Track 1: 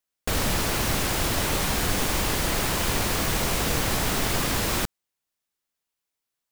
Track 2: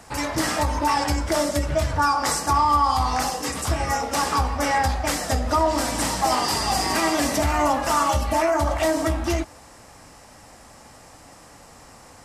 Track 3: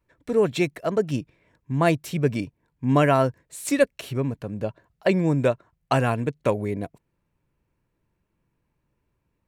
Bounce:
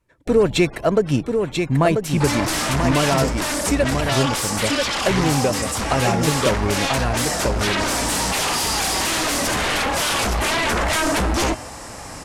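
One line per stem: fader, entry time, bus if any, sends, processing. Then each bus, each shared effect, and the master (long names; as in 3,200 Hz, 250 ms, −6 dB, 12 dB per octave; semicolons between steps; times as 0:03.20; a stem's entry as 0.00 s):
−1.5 dB, 0.00 s, no send, no echo send, gate on every frequency bin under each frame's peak −15 dB strong; automatic ducking −12 dB, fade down 0.90 s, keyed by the third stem
−9.5 dB, 2.10 s, no send, no echo send, hum removal 123.7 Hz, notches 27; sine wavefolder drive 15 dB, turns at −8.5 dBFS
+3.0 dB, 0.00 s, no send, echo send −4 dB, downward compressor, threshold −20 dBFS, peak gain reduction 8 dB; leveller curve on the samples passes 1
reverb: not used
echo: single-tap delay 989 ms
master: Chebyshev low-pass filter 11,000 Hz, order 2; speech leveller 2 s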